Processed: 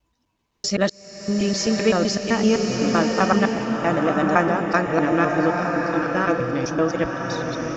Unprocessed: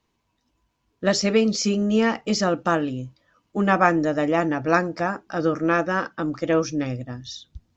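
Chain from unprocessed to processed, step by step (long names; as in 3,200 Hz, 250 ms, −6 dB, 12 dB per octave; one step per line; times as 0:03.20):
slices reordered back to front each 128 ms, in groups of 5
slow-attack reverb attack 1,130 ms, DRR 1.5 dB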